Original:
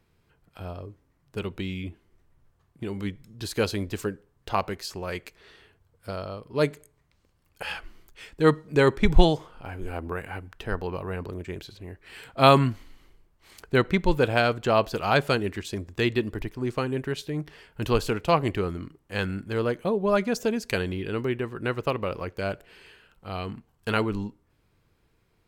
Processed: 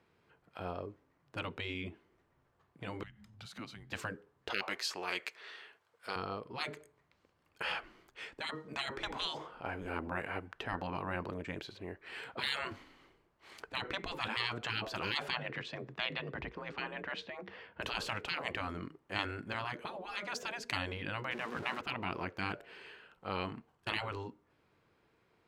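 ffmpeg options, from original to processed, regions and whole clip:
-filter_complex "[0:a]asettb=1/sr,asplit=3[s0][s1][s2];[s0]atrim=end=3.034[s3];[s1]atrim=start=3.03:end=3.92,asetpts=PTS-STARTPTS,afade=t=in:d=0.004:c=qsin,afade=t=out:st=0.886:d=0.004:c=qsin,acompressor=threshold=0.00562:ratio=3:attack=3.2:release=140:knee=1:detection=peak,afreqshift=-220[s4];[s2]atrim=start=3.916[s5];[s3][s4]acrossfade=d=0.004:c1=hsin:c2=qsin[s6];[s6][s5]acrossfade=d=0.004:c1=qsin:c2=hsin,asettb=1/sr,asplit=3[s7][s8][s9];[s7]atrim=end=4.504[s10];[s8]atrim=start=4.5:end=6.16,asetpts=PTS-STARTPTS,afade=t=in:d=0.004:c=qsin,afade=t=out:st=1.656:d=0.004:c=qsin,highpass=f=1400:p=1,acontrast=61[s11];[s9]atrim=start=6.156[s12];[s10][s11]acrossfade=d=0.004:c1=hsin:c2=qsin[s13];[s13][s12]acrossfade=d=0.004:c1=qsin:c2=hsin,asettb=1/sr,asplit=3[s14][s15][s16];[s14]atrim=end=15.304[s17];[s15]atrim=start=15.3:end=17.81,asetpts=PTS-STARTPTS,afade=t=in:d=0.004:c=qsin,afade=t=out:st=2.506:d=0.004:c=qsin,lowpass=3700,afreqshift=43[s18];[s16]atrim=start=17.806[s19];[s17][s18]acrossfade=d=0.004:c1=hsin:c2=qsin[s20];[s20][s19]acrossfade=d=0.004:c1=qsin:c2=hsin,asettb=1/sr,asplit=3[s21][s22][s23];[s21]atrim=end=21.314[s24];[s22]atrim=start=21.31:end=21.81,asetpts=PTS-STARTPTS,afade=t=in:d=0.004:c=qsin,afade=t=out:st=0.496:d=0.004:c=qsin,aeval=exprs='val(0)+0.5*0.0126*sgn(val(0))':c=same,equalizer=f=120:t=o:w=0.32:g=12[s25];[s23]atrim=start=21.806[s26];[s24][s25]acrossfade=d=0.004:c1=hsin:c2=qsin[s27];[s27][s26]acrossfade=d=0.004:c1=qsin:c2=hsin,highpass=f=410:p=1,aemphasis=mode=reproduction:type=75fm,afftfilt=real='re*lt(hypot(re,im),0.0708)':imag='im*lt(hypot(re,im),0.0708)':win_size=1024:overlap=0.75,volume=1.26"

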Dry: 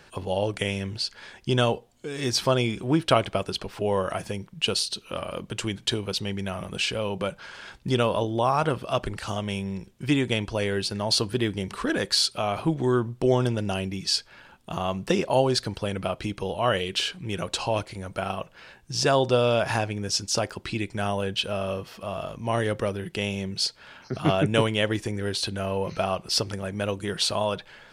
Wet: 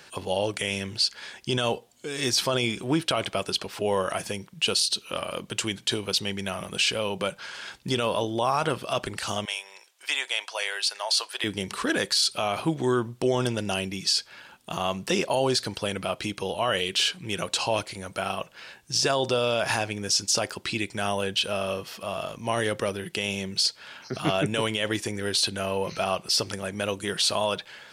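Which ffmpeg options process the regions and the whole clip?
-filter_complex "[0:a]asettb=1/sr,asplit=3[s0][s1][s2];[s0]atrim=end=9.454[s3];[s1]atrim=start=9.45:end=11.44,asetpts=PTS-STARTPTS,afade=t=in:d=0.004:c=qsin,afade=t=out:st=1.986:d=0.004:c=qsin,highpass=f=670:w=0.5412,highpass=f=670:w=1.3066,highshelf=f=12000:g=-4.5[s4];[s2]atrim=start=11.436[s5];[s3][s4]acrossfade=d=0.004:c1=hsin:c2=qsin[s6];[s6][s5]acrossfade=d=0.004:c1=qsin:c2=hsin,highpass=f=160:p=1,highshelf=f=2300:g=8,alimiter=limit=0.211:level=0:latency=1:release=16"

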